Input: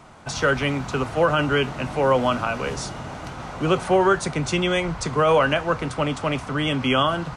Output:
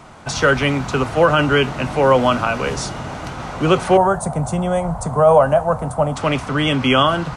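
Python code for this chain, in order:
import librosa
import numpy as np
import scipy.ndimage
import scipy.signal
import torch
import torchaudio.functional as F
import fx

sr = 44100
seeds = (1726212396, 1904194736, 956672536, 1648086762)

y = fx.curve_eq(x, sr, hz=(210.0, 340.0, 690.0, 2400.0, 5400.0, 8900.0), db=(0, -12, 7, -20, -15, 2), at=(3.97, 6.16))
y = y * 10.0 ** (5.5 / 20.0)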